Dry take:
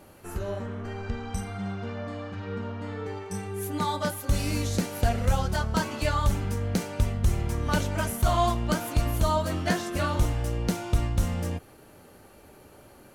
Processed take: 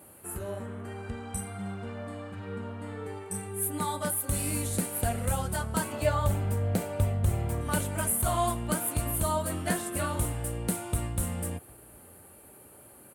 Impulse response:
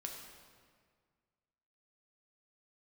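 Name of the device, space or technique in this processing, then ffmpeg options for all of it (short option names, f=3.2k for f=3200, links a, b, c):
budget condenser microphone: -filter_complex "[0:a]asettb=1/sr,asplit=3[a][b][c];[a]atrim=end=5.924[d];[b]atrim=start=5.92:end=7.61,asetpts=PTS-STARTPTS,afade=t=in:d=0.004:c=qsin,afade=t=out:st=1.686:d=0.004:c=qsin,equalizer=f=100:t=o:w=0.67:g=6,equalizer=f=630:t=o:w=0.67:g=8,equalizer=f=10k:t=o:w=0.67:g=-10[e];[c]atrim=start=7.606[f];[d][e]acrossfade=d=0.004:c1=hsin:c2=qsin[g];[g][f]acrossfade=d=0.004:c1=qsin:c2=hsin,highpass=68,highshelf=f=7.3k:t=q:w=3:g=8.5,asplit=2[h][i];[i]adelay=758,volume=-26dB,highshelf=f=4k:g=-17.1[j];[h][j]amix=inputs=2:normalize=0,volume=-3.5dB"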